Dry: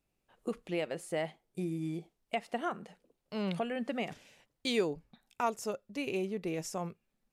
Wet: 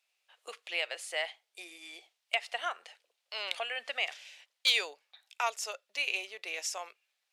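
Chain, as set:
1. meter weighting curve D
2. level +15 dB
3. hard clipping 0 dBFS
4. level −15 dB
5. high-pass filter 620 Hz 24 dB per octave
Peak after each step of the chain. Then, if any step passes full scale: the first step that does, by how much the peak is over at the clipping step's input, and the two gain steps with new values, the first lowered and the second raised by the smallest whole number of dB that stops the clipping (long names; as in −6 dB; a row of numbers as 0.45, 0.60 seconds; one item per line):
−11.0, +4.0, 0.0, −15.0, −12.0 dBFS
step 2, 4.0 dB
step 2 +11 dB, step 4 −11 dB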